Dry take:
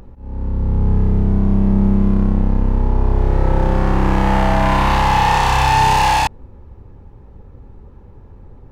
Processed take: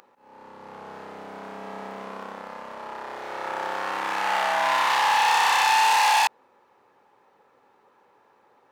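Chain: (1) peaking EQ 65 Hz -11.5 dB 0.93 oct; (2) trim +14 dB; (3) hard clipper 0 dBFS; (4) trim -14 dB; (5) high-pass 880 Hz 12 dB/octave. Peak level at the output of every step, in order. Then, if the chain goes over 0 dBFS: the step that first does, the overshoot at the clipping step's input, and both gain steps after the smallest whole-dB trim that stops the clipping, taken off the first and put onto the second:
-4.5 dBFS, +9.5 dBFS, 0.0 dBFS, -14.0 dBFS, -8.5 dBFS; step 2, 9.5 dB; step 2 +4 dB, step 4 -4 dB

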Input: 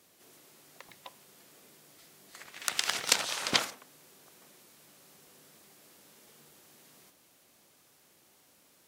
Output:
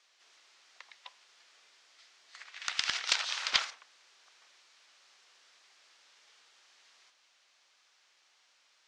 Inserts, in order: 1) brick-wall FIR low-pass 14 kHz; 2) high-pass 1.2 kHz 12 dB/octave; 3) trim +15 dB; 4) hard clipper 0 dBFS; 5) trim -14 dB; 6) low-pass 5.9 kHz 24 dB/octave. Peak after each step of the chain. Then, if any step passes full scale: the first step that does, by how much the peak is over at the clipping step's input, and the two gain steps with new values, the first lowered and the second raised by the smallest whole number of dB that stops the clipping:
-3.5 dBFS, -5.0 dBFS, +10.0 dBFS, 0.0 dBFS, -14.0 dBFS, -12.0 dBFS; step 3, 10.0 dB; step 3 +5 dB, step 5 -4 dB

